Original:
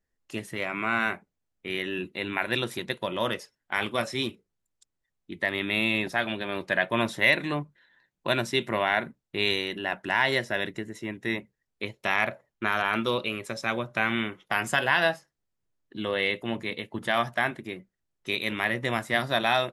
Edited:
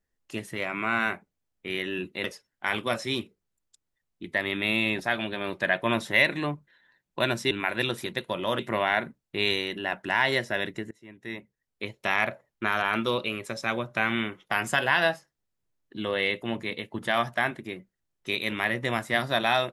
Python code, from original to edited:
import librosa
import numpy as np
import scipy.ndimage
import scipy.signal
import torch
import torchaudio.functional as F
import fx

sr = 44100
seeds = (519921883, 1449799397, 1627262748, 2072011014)

y = fx.edit(x, sr, fx.move(start_s=2.24, length_s=1.08, to_s=8.59),
    fx.fade_in_from(start_s=10.91, length_s=1.07, floor_db=-23.5), tone=tone)